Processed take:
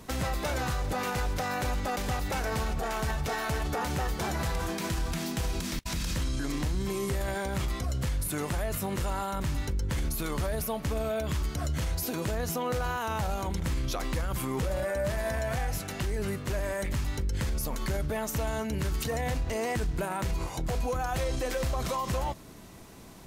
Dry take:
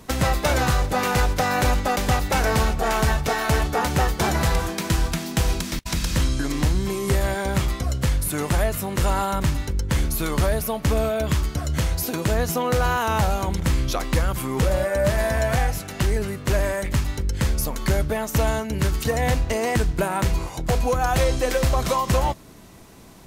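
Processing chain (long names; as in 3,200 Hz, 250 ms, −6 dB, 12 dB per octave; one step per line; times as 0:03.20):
brickwall limiter −20.5 dBFS, peak gain reduction 8.5 dB
level −2.5 dB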